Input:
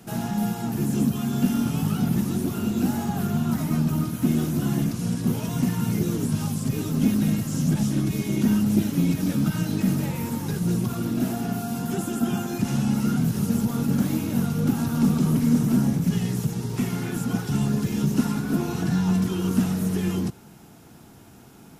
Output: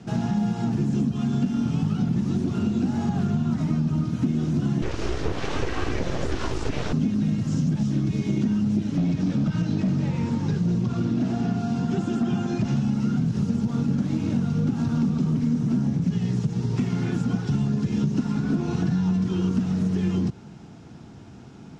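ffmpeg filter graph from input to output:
ffmpeg -i in.wav -filter_complex "[0:a]asettb=1/sr,asplit=3[link_01][link_02][link_03];[link_01]atrim=end=4.824[link_04];[link_02]atrim=start=4.82:end=6.93,asetpts=PTS-STARTPTS,afade=type=in:duration=0.004:curve=qsin,afade=type=out:start_time=2.106:duration=0.004:curve=qsin,equalizer=frequency=1600:width_type=o:width=2.8:gain=12,aeval=exprs='abs(val(0))':channel_layout=same[link_05];[link_03]atrim=start=6.926[link_06];[link_04][link_05]acrossfade=duration=0.004:curve1=hsin:curve2=qsin[link_07];[link_07][link_06]acrossfade=duration=0.004:curve1=qsin:curve2=hsin,asettb=1/sr,asplit=3[link_08][link_09][link_10];[link_08]atrim=end=8.964[link_11];[link_09]atrim=start=8.96:end=12.77,asetpts=PTS-STARTPTS,afade=type=in:duration=0.004:curve=qsin,afade=type=out:start_time=3.806:duration=0.004:curve=qsin,lowpass=7400,volume=18.5dB,asoftclip=hard,volume=-18.5dB[link_12];[link_10]atrim=start=12.766[link_13];[link_11][link_12]acrossfade=duration=0.004:curve1=hsin:curve2=qsin[link_14];[link_14][link_13]acrossfade=duration=0.004:curve1=qsin:curve2=hsin,lowpass=frequency=6300:width=0.5412,lowpass=frequency=6300:width=1.3066,equalizer=frequency=120:width_type=o:width=3:gain=6.5,acompressor=threshold=-20dB:ratio=6" out.wav

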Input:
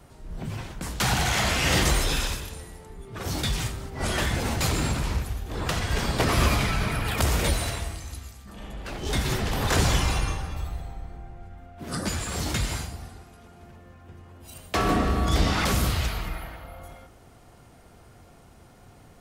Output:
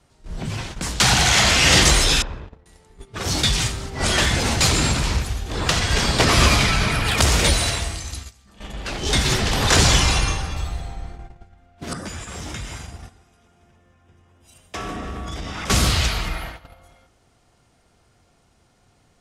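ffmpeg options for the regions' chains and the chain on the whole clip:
ffmpeg -i in.wav -filter_complex "[0:a]asettb=1/sr,asplit=3[link_01][link_02][link_03];[link_01]atrim=end=2.224[link_04];[link_02]atrim=start=2.22:end=2.66,asetpts=PTS-STARTPTS,afade=type=in:duration=0.004:curve=qsin,afade=type=out:start_time=0.436:duration=0.004:curve=qsin,aeval=exprs='sgn(val(0))*max(abs(val(0))-0.00531,0)':channel_layout=same,lowpass=1100,acompressor=threshold=-34dB:ratio=2:attack=3.2:release=140:knee=1:detection=peak[link_05];[link_03]atrim=start=2.656[link_06];[link_04][link_05]acrossfade=duration=0.004:curve1=hsin:curve2=qsin[link_07];[link_07][link_06]acrossfade=duration=0.004:curve1=qsin:curve2=hsin,asettb=1/sr,asplit=3[link_08][link_09][link_10];[link_08]atrim=end=11.934[link_11];[link_09]atrim=start=11.93:end=15.7,asetpts=PTS-STARTPTS,afade=type=in:duration=0.004:curve=qsin,afade=type=out:start_time=3.766:duration=0.004:curve=qsin,bandreject=frequency=4300:width=5.3,acompressor=threshold=-34dB:ratio=5:attack=3.2:release=140:knee=1:detection=peak,adynamicequalizer=threshold=0.002:dfrequency=2700:dqfactor=0.7:tfrequency=2700:tqfactor=0.7:attack=5:release=100:ratio=0.375:range=2.5:mode=cutabove:tftype=highshelf[link_12];[link_10]atrim=start=15.696[link_13];[link_11][link_12]acrossfade=duration=0.004:curve1=hsin:curve2=qsin[link_14];[link_14][link_13]acrossfade=duration=0.004:curve1=qsin:curve2=hsin,agate=range=-14dB:threshold=-38dB:ratio=16:detection=peak,lowpass=7300,highshelf=frequency=2800:gain=10,volume=5dB" out.wav

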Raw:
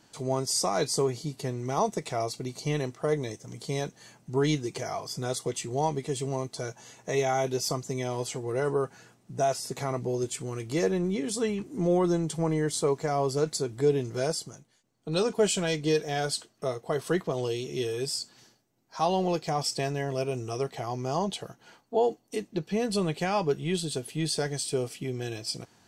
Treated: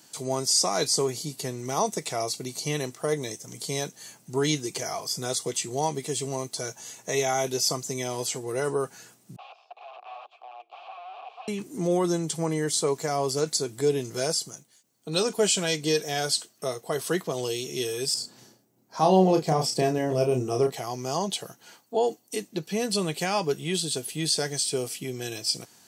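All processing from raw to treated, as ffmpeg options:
ffmpeg -i in.wav -filter_complex "[0:a]asettb=1/sr,asplit=3[link_01][link_02][link_03];[link_01]atrim=end=9.364[link_04];[link_02]atrim=start=9.36:end=11.48,asetpts=PTS-STARTPTS,afade=type=in:duration=0.004:curve=qsin,afade=type=out:start_time=2.116:duration=0.004:curve=qsin,aeval=exprs='(mod(26.6*val(0)+1,2)-1)/26.6':channel_layout=same,asplit=3[link_05][link_06][link_07];[link_05]bandpass=frequency=730:width_type=q:width=8,volume=0dB[link_08];[link_06]bandpass=frequency=1090:width_type=q:width=8,volume=-6dB[link_09];[link_07]bandpass=frequency=2440:width_type=q:width=8,volume=-9dB[link_10];[link_08][link_09][link_10]amix=inputs=3:normalize=0,highpass=frequency=450:width=0.5412,highpass=frequency=450:width=1.3066,equalizer=frequency=530:width_type=q:width=4:gain=-4,equalizer=frequency=830:width_type=q:width=4:gain=7,equalizer=frequency=1500:width_type=q:width=4:gain=-7,equalizer=frequency=2200:width_type=q:width=4:gain=-4,lowpass=frequency=3500:width=0.5412,lowpass=frequency=3500:width=1.3066[link_11];[link_03]atrim=start=11.476[link_12];[link_04][link_11]acrossfade=duration=0.004:curve1=hsin:curve2=qsin[link_13];[link_13][link_12]acrossfade=duration=0.004:curve1=qsin:curve2=hsin,asettb=1/sr,asplit=3[link_14][link_15][link_16];[link_14]atrim=end=18.144[link_17];[link_15]atrim=start=18.14:end=20.72,asetpts=PTS-STARTPTS,afade=type=in:duration=0.004:curve=qsin,afade=type=out:start_time=2.576:duration=0.004:curve=qsin,tiltshelf=frequency=1300:gain=7.5,asplit=2[link_18][link_19];[link_19]adelay=32,volume=-5.5dB[link_20];[link_18][link_20]amix=inputs=2:normalize=0,atrim=end_sample=113778[link_21];[link_16]atrim=start=20.716[link_22];[link_17][link_21]acrossfade=duration=0.004:curve1=hsin:curve2=qsin[link_23];[link_23][link_22]acrossfade=duration=0.004:curve1=qsin:curve2=hsin,acrossover=split=6900[link_24][link_25];[link_25]acompressor=threshold=-47dB:ratio=4:attack=1:release=60[link_26];[link_24][link_26]amix=inputs=2:normalize=0,highpass=130,aemphasis=mode=production:type=75kf" out.wav

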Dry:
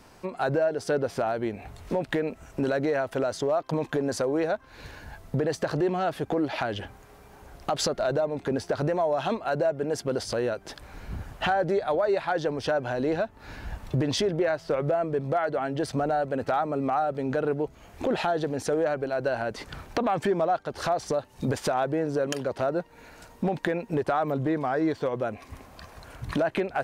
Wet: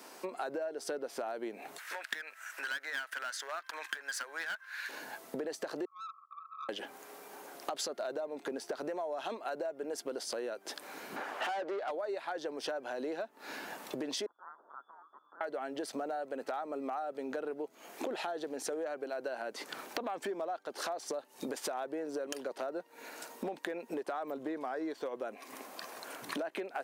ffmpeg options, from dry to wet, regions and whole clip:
ffmpeg -i in.wav -filter_complex "[0:a]asettb=1/sr,asplit=3[link_01][link_02][link_03];[link_01]atrim=end=1.784[link_04];[link_02]atrim=start=1.78:end=4.89,asetpts=PTS-STARTPTS,afade=type=in:duration=0.004:curve=qsin,afade=type=out:start_time=3.106:duration=0.004:curve=qsin,highpass=frequency=1600:width_type=q:width=4.6,aeval=exprs='clip(val(0),-1,0.0335)':channel_layout=same[link_05];[link_03]atrim=start=4.886[link_06];[link_04][link_05]acrossfade=duration=0.004:curve1=hsin:curve2=qsin[link_07];[link_07][link_06]acrossfade=duration=0.004:curve1=qsin:curve2=hsin,asettb=1/sr,asplit=3[link_08][link_09][link_10];[link_08]atrim=end=5.854[link_11];[link_09]atrim=start=5.85:end=6.69,asetpts=PTS-STARTPTS,afade=type=in:duration=0.004:curve=qsin,afade=type=out:start_time=0.836:duration=0.004:curve=qsin,asuperpass=centerf=1200:order=20:qfactor=4.7,aeval=exprs='(tanh(63.1*val(0)+0.15)-tanh(0.15))/63.1':channel_layout=same[link_12];[link_10]atrim=start=6.686[link_13];[link_11][link_12]acrossfade=duration=0.004:curve1=hsin:curve2=qsin[link_14];[link_14][link_13]acrossfade=duration=0.004:curve1=qsin:curve2=hsin,asettb=1/sr,asplit=3[link_15][link_16][link_17];[link_15]atrim=end=11.164[link_18];[link_16]atrim=start=11.16:end=11.91,asetpts=PTS-STARTPTS,afade=type=in:duration=0.004:curve=qsin,afade=type=out:start_time=0.746:duration=0.004:curve=qsin,highpass=frequency=300:poles=1,highshelf=frequency=4200:gain=-11,asplit=2[link_19][link_20];[link_20]highpass=frequency=720:poles=1,volume=21dB,asoftclip=type=tanh:threshold=-15dB[link_21];[link_19][link_21]amix=inputs=2:normalize=0,lowpass=frequency=2600:poles=1,volume=-6dB[link_22];[link_17]atrim=start=11.906[link_23];[link_18][link_22]acrossfade=duration=0.004:curve1=hsin:curve2=qsin[link_24];[link_24][link_23]acrossfade=duration=0.004:curve1=qsin:curve2=hsin,asettb=1/sr,asplit=3[link_25][link_26][link_27];[link_25]atrim=end=14.264[link_28];[link_26]atrim=start=14.26:end=15.41,asetpts=PTS-STARTPTS,afade=type=in:duration=0.004:curve=qsin,afade=type=out:start_time=1.146:duration=0.004:curve=qsin,lowpass=frequency=3100:width_type=q:width=0.5098,lowpass=frequency=3100:width_type=q:width=0.6013,lowpass=frequency=3100:width_type=q:width=0.9,lowpass=frequency=3100:width_type=q:width=2.563,afreqshift=-3600,asuperstop=centerf=2700:order=12:qfactor=0.7[link_29];[link_27]atrim=start=15.406[link_30];[link_28][link_29]acrossfade=duration=0.004:curve1=hsin:curve2=qsin[link_31];[link_31][link_30]acrossfade=duration=0.004:curve1=qsin:curve2=hsin,highpass=frequency=270:width=0.5412,highpass=frequency=270:width=1.3066,highshelf=frequency=7900:gain=9.5,acompressor=threshold=-39dB:ratio=4,volume=1.5dB" out.wav

